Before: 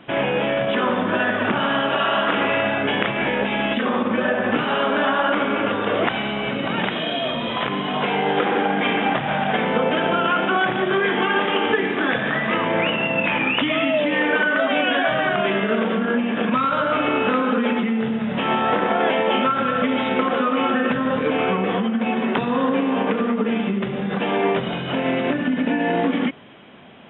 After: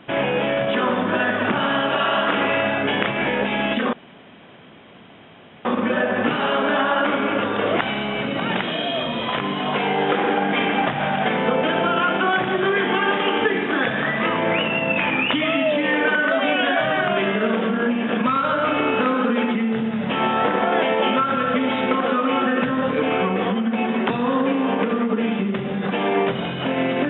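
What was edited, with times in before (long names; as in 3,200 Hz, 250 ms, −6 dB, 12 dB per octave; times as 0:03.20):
0:03.93: splice in room tone 1.72 s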